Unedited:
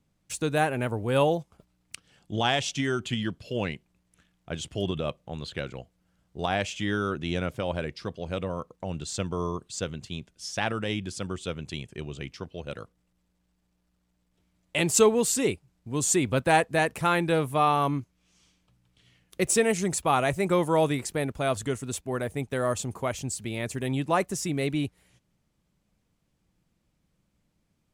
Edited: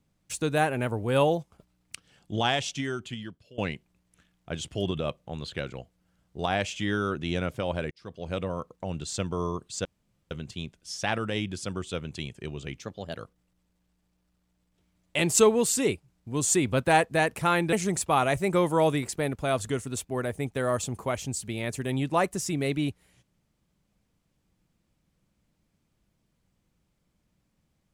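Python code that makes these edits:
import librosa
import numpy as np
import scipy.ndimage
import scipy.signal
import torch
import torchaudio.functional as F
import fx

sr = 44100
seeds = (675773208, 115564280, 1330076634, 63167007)

y = fx.edit(x, sr, fx.fade_out_to(start_s=2.38, length_s=1.2, floor_db=-21.0),
    fx.fade_in_span(start_s=7.91, length_s=0.4),
    fx.insert_room_tone(at_s=9.85, length_s=0.46),
    fx.speed_span(start_s=12.34, length_s=0.42, speed=1.15),
    fx.cut(start_s=17.32, length_s=2.37), tone=tone)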